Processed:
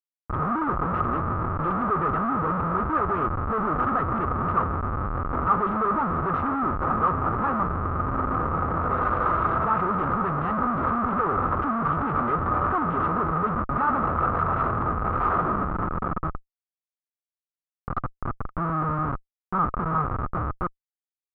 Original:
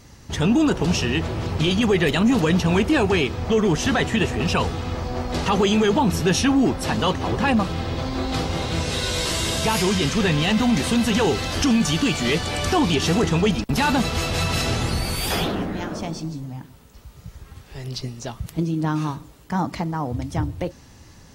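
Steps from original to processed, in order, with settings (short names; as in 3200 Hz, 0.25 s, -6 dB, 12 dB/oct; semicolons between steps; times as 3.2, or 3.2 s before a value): Schmitt trigger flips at -25 dBFS; ladder low-pass 1300 Hz, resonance 85%; gain +6.5 dB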